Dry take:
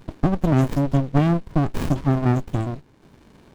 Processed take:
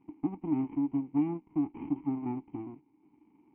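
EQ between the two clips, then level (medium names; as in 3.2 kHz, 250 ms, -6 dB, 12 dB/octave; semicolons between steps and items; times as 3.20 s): vowel filter u; brick-wall FIR low-pass 3.2 kHz; distance through air 340 m; -2.0 dB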